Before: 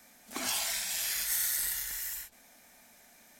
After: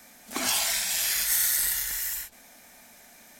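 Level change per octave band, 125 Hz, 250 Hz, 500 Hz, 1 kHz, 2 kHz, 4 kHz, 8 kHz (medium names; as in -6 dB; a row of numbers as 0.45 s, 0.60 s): no reading, +6.5 dB, +6.5 dB, +6.5 dB, +6.5 dB, +6.5 dB, +6.5 dB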